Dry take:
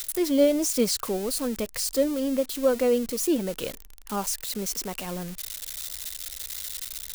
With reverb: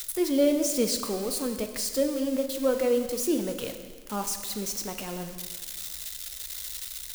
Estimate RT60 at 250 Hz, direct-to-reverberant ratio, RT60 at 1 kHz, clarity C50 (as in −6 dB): 1.6 s, 6.5 dB, 1.6 s, 8.5 dB